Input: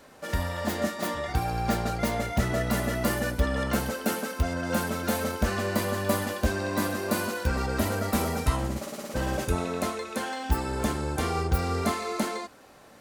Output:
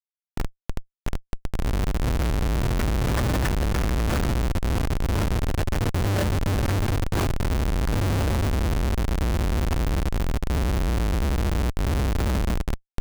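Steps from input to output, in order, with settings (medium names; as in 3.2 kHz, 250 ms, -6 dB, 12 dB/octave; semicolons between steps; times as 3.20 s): random holes in the spectrogram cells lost 82%; in parallel at -7 dB: word length cut 6-bit, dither triangular; on the sum: amplifier tone stack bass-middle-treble 10-0-10; reverberation RT60 3.2 s, pre-delay 4 ms, DRR -16.5 dB; Schmitt trigger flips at -16 dBFS; trim -1.5 dB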